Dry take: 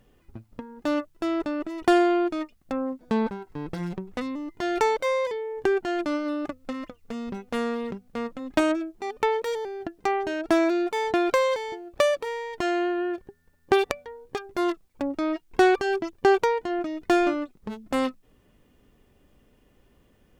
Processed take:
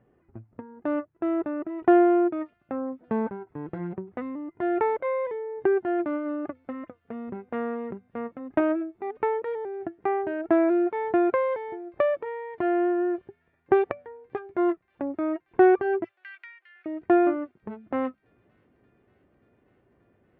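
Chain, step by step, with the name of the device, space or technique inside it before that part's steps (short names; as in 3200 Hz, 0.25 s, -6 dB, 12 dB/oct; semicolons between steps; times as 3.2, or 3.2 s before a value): 16.04–16.86 steep high-pass 1900 Hz 36 dB/oct; bass cabinet (speaker cabinet 87–2000 Hz, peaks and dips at 110 Hz +6 dB, 360 Hz +6 dB, 680 Hz +4 dB); thin delay 0.581 s, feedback 83%, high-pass 4400 Hz, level -21 dB; gain -3.5 dB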